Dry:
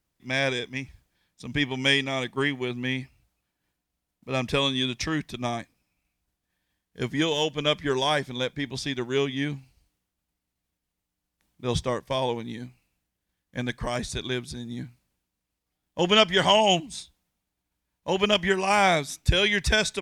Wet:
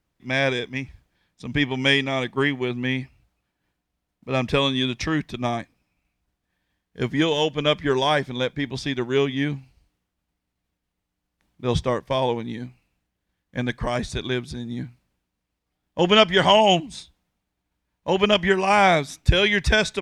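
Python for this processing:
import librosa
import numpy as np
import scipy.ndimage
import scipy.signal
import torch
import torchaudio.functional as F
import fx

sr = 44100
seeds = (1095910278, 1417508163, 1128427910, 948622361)

y = fx.high_shelf(x, sr, hz=5300.0, db=-11.0)
y = y * librosa.db_to_amplitude(4.5)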